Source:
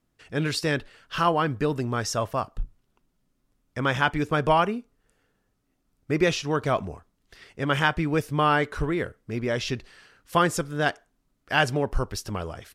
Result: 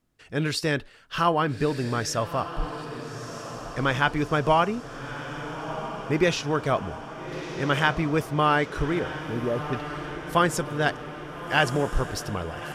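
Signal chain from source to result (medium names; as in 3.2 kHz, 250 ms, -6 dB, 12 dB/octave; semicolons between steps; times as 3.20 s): 8.99–9.73 s: Chebyshev low-pass 780 Hz; on a send: echo that smears into a reverb 1300 ms, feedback 61%, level -10.5 dB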